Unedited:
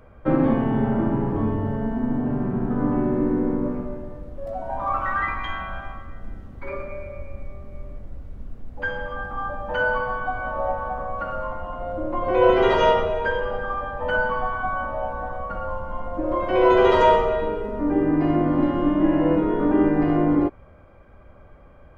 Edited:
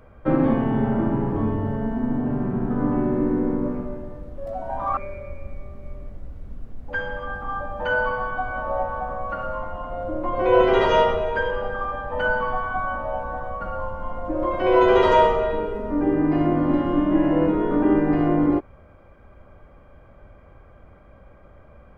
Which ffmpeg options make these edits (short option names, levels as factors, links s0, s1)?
-filter_complex "[0:a]asplit=2[s0][s1];[s0]atrim=end=4.972[s2];[s1]atrim=start=6.858[s3];[s2][s3]acrossfade=d=0.004:c1=hsin:c2=hsin"